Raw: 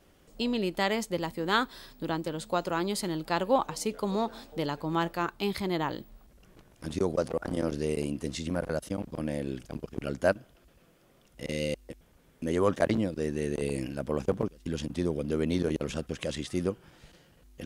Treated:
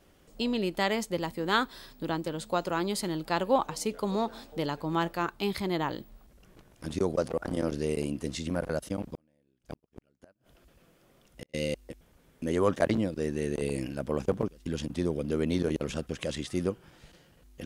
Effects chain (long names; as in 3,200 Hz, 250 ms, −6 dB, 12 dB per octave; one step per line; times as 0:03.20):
0:09.01–0:11.54: gate with flip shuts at −25 dBFS, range −38 dB